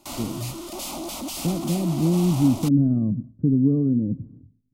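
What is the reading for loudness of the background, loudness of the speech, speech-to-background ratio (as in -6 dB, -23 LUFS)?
-32.5 LUFS, -22.5 LUFS, 10.0 dB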